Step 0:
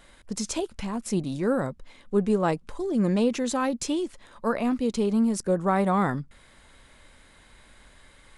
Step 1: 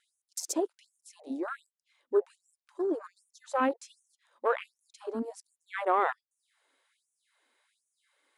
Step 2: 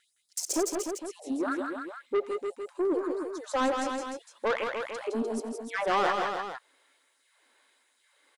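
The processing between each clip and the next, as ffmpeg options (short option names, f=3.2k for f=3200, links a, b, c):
-af "afwtdn=0.0141,afftfilt=real='re*gte(b*sr/1024,240*pow(5800/240,0.5+0.5*sin(2*PI*1.3*pts/sr)))':imag='im*gte(b*sr/1024,240*pow(5800/240,0.5+0.5*sin(2*PI*1.3*pts/sr)))':win_size=1024:overlap=0.75"
-af "asoftclip=type=tanh:threshold=-28dB,aecho=1:1:88|163|177|300|457:0.1|0.562|0.266|0.447|0.282,volume=5.5dB"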